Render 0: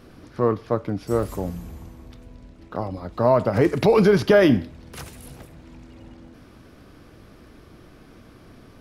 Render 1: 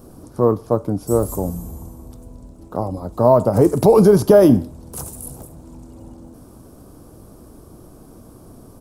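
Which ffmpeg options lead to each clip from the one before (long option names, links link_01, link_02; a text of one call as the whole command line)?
ffmpeg -i in.wav -af "firequalizer=gain_entry='entry(930,0);entry(1900,-19);entry(8100,9)':delay=0.05:min_phase=1,volume=5dB" out.wav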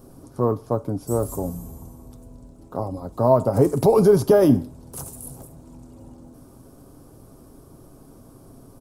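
ffmpeg -i in.wav -af "aecho=1:1:7.4:0.32,volume=-4.5dB" out.wav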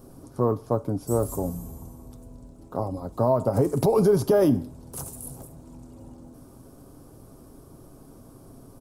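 ffmpeg -i in.wav -af "alimiter=limit=-10.5dB:level=0:latency=1:release=187,volume=-1dB" out.wav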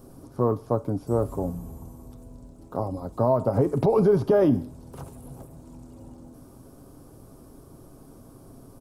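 ffmpeg -i in.wav -filter_complex "[0:a]acrossover=split=3600[link_01][link_02];[link_02]acompressor=threshold=-56dB:ratio=4:attack=1:release=60[link_03];[link_01][link_03]amix=inputs=2:normalize=0" out.wav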